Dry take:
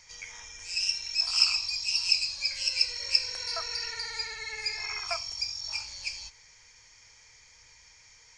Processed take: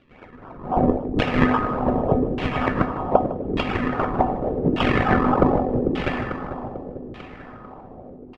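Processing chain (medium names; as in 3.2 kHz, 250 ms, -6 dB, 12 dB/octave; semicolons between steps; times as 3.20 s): 4.80–5.60 s: RIAA curve recording; decimation with a swept rate 41×, swing 100% 3.7 Hz; level rider gain up to 16 dB; feedback comb 250 Hz, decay 0.46 s, harmonics odd, mix 80%; feedback delay 445 ms, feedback 55%, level -8 dB; LFO low-pass saw down 0.84 Hz 350–3000 Hz; delay 155 ms -15 dB; trim +7.5 dB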